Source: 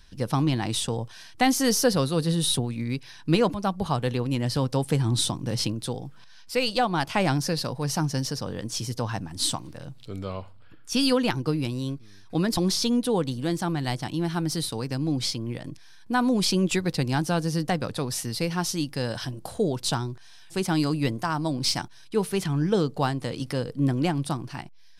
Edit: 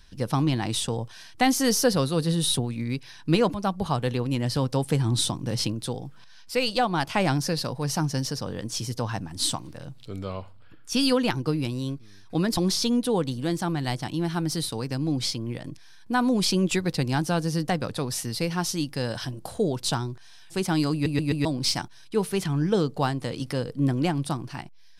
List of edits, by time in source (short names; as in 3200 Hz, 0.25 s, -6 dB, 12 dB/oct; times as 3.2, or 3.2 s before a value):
20.93 stutter in place 0.13 s, 4 plays